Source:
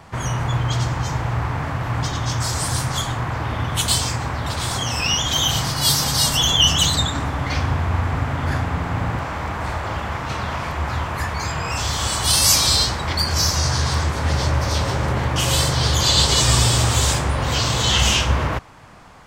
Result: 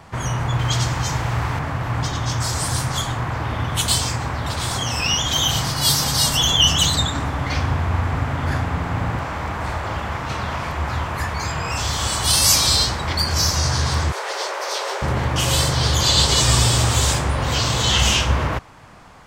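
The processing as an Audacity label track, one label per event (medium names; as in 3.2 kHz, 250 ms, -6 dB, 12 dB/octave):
0.590000	1.590000	treble shelf 2.4 kHz +7.5 dB
14.120000	15.020000	steep high-pass 370 Hz 72 dB/octave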